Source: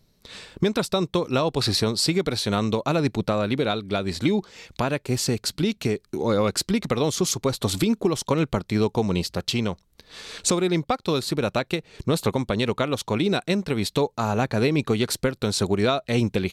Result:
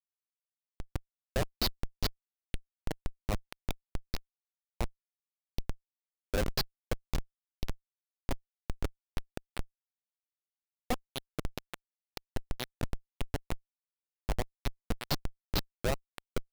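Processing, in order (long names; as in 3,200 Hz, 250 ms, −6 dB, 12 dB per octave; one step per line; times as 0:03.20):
high shelf with overshoot 6,600 Hz −10 dB, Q 3
auto-filter band-pass sine 2 Hz 550–4,900 Hz
comparator with hysteresis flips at −20.5 dBFS
level +5.5 dB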